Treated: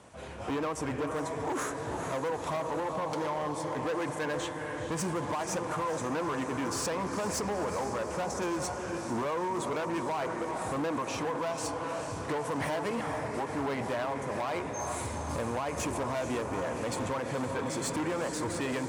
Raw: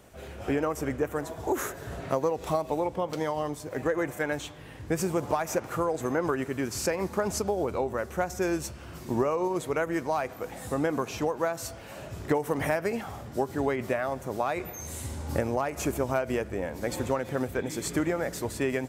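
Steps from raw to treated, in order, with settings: steep low-pass 11000 Hz 96 dB/oct; notch 390 Hz, Q 12; diffused feedback echo 0.451 s, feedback 60%, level -9 dB; hard clip -28.5 dBFS, distortion -8 dB; bell 1000 Hz +8.5 dB 0.35 oct; limiter -26 dBFS, peak gain reduction 5 dB; HPF 81 Hz

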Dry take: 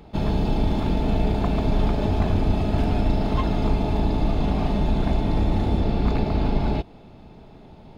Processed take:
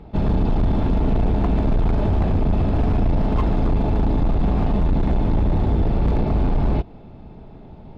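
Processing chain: LPF 1700 Hz 6 dB/oct; low shelf 150 Hz +5 dB; hard clip -17 dBFS, distortion -10 dB; gain +2.5 dB

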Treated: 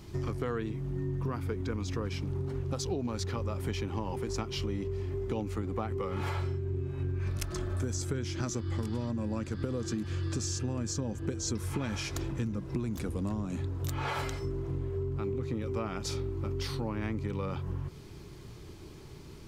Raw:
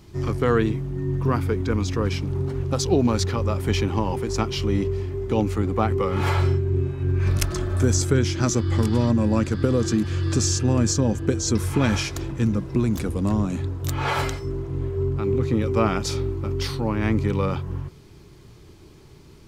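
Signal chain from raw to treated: compressor, threshold -31 dBFS, peak gain reduction 15.5 dB

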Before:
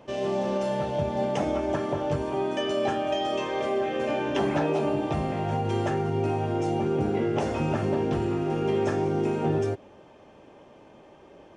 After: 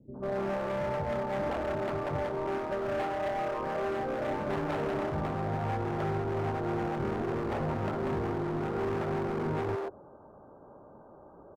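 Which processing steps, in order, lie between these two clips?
steep low-pass 1500 Hz 96 dB/oct; hard clip -28.5 dBFS, distortion -8 dB; bands offset in time lows, highs 0.14 s, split 320 Hz

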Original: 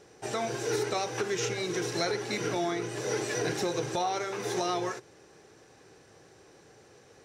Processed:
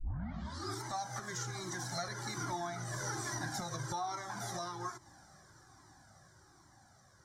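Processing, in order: tape start at the beginning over 0.83 s; Doppler pass-by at 3.08, 6 m/s, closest 7.6 m; fixed phaser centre 1100 Hz, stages 4; compressor 2.5:1, threshold -49 dBFS, peak gain reduction 12 dB; cascading flanger falling 1.2 Hz; gain +12.5 dB

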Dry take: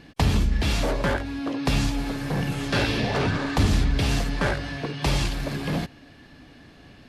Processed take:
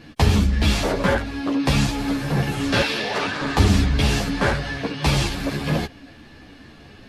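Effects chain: 2.81–3.41 HPF 690 Hz 6 dB/oct; ensemble effect; gain +7.5 dB

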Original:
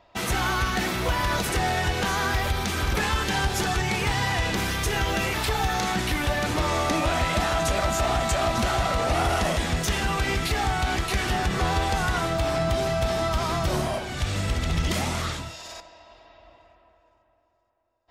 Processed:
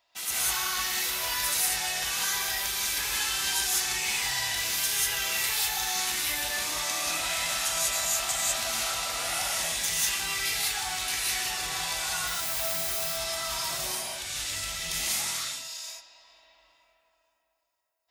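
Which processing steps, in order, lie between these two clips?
12.27–12.98 level-crossing sampler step -29.5 dBFS; pre-emphasis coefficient 0.97; non-linear reverb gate 0.22 s rising, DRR -6.5 dB

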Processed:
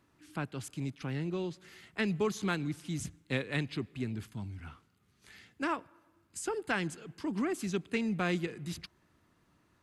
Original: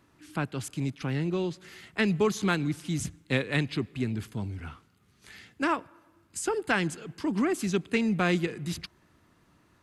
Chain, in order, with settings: 4.26–4.66 bell 450 Hz -9.5 dB 0.75 oct; gain -6 dB

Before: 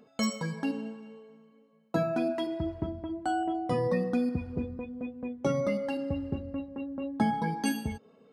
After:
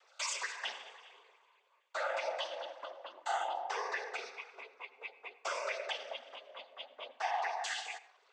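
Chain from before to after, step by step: Bessel high-pass 1200 Hz, order 6; limiter -34 dBFS, peak gain reduction 9.5 dB; noise vocoder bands 16; on a send: reverb RT60 0.50 s, pre-delay 77 ms, DRR 16 dB; on the sum: gain +6.5 dB

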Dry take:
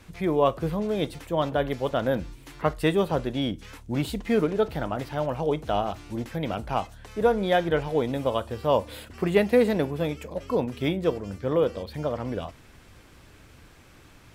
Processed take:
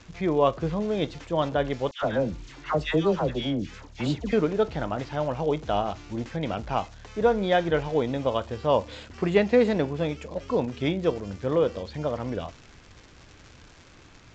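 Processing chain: crackle 200/s -37 dBFS; 1.91–4.33 dispersion lows, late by 0.112 s, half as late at 1200 Hz; Vorbis 96 kbps 16000 Hz

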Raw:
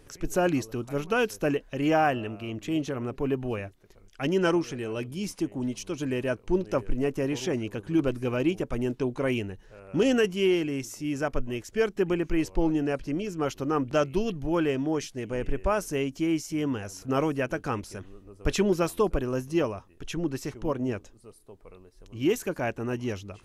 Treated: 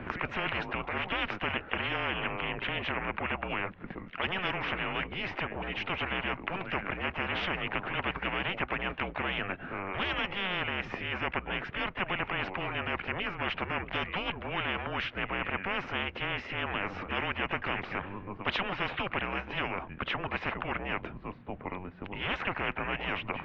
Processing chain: mistuned SSB -190 Hz 220–2700 Hz; harmoniser +3 st -16 dB; spectral compressor 10:1

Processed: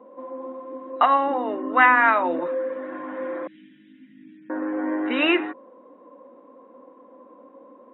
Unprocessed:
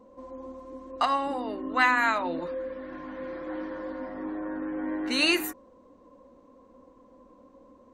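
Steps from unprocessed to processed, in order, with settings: 3.47–4.5 elliptic band-stop 200–2800 Hz, stop band 50 dB; FFT band-pass 120–3900 Hz; three-band isolator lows -22 dB, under 240 Hz, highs -15 dB, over 2400 Hz; gain +8 dB

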